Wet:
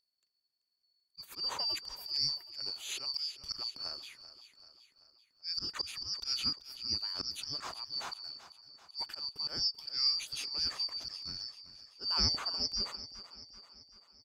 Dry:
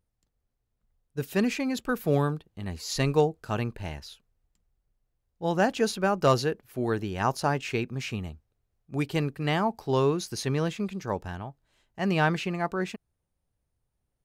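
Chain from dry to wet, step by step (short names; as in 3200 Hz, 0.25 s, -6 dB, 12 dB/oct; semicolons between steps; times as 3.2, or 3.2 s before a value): four-band scrambler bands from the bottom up 2341; auto swell 0.17 s; on a send: feedback echo 0.386 s, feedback 55%, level -14.5 dB; on the sum: gain -6 dB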